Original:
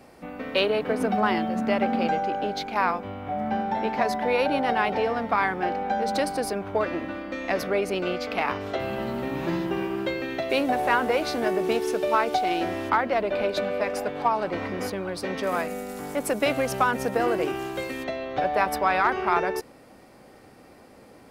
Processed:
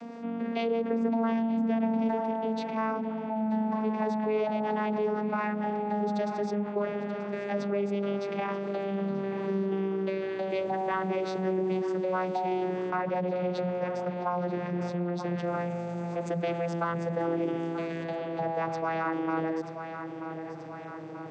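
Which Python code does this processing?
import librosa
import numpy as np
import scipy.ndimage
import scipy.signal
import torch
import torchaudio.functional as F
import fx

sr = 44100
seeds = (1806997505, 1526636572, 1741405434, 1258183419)

y = fx.vocoder_glide(x, sr, note=58, semitones=-7)
y = fx.echo_feedback(y, sr, ms=933, feedback_pct=42, wet_db=-17.0)
y = fx.env_flatten(y, sr, amount_pct=50)
y = F.gain(torch.from_numpy(y), -7.0).numpy()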